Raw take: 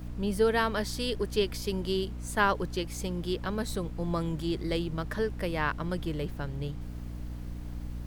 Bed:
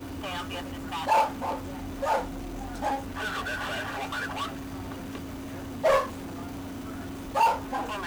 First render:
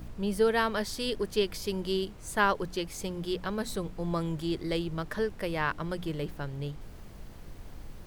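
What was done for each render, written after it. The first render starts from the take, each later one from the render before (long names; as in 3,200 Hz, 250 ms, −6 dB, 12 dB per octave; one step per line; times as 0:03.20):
hum removal 60 Hz, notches 5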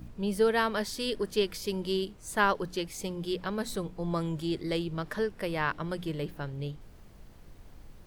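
noise reduction from a noise print 6 dB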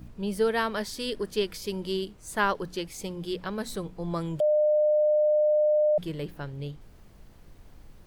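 0:04.40–0:05.98: beep over 604 Hz −19 dBFS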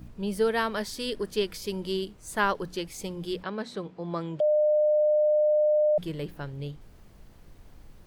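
0:03.43–0:05.00: band-pass filter 180–4,300 Hz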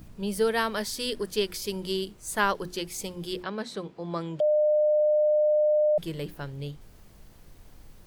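high-shelf EQ 4,400 Hz +7 dB
mains-hum notches 60/120/180/240/300/360 Hz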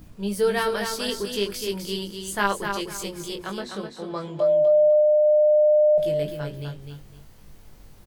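double-tracking delay 20 ms −4.5 dB
repeating echo 253 ms, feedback 26%, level −6 dB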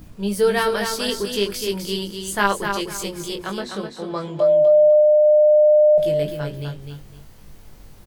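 level +4 dB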